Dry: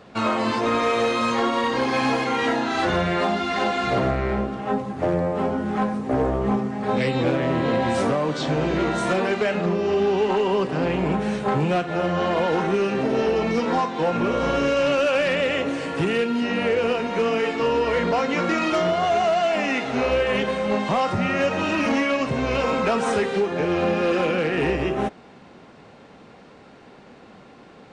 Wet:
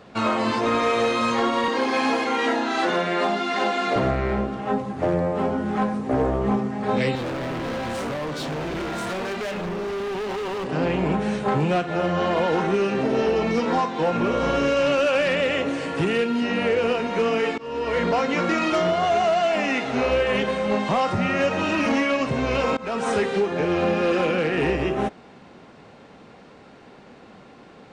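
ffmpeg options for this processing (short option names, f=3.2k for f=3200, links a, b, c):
-filter_complex "[0:a]asettb=1/sr,asplit=3[a][b][c];[a]atrim=end=1.684[d];[b]atrim=start=1.68:end=3.96,asetpts=PTS-STARTPTS,afade=t=in:d=0.004:c=qsin,afade=t=out:st=2.276:d=0.004:c=qsin,highpass=f=210:w=0.5412,highpass=f=210:w=1.3066[e];[c]atrim=start=3.956[f];[d][e]acrossfade=d=0.004:c1=hsin:c2=qsin[g];[g][f]acrossfade=d=0.004:c1=qsin:c2=hsin,asettb=1/sr,asplit=3[h][i][j];[h]atrim=end=7.154[k];[i]atrim=start=7.15:end=10.66,asetpts=PTS-STARTPTS,afade=t=in:d=0.004:c=qsin,afade=t=out:st=3.506:d=0.004:c=qsin,volume=26.5dB,asoftclip=hard,volume=-26.5dB[l];[j]atrim=start=10.656[m];[k][l]acrossfade=d=0.004:c1=hsin:c2=qsin[n];[n][m]acrossfade=d=0.004:c1=qsin:c2=hsin,asplit=3[o][p][q];[o]atrim=end=17.58,asetpts=PTS-STARTPTS,afade=t=out:st=17.576:d=0.004:c=hsin:silence=0.0630957[r];[p]atrim=start=17.58:end=22.77,asetpts=PTS-STARTPTS,afade=t=in:d=0.44:silence=0.0630957,afade=t=out:st=5.186:d=0.004:c=hsin:silence=0.0668344[s];[q]atrim=start=22.77,asetpts=PTS-STARTPTS,afade=t=in:d=0.47:c=qsin:silence=0.0668344[t];[r][s][t]concat=n=3:v=0:a=1"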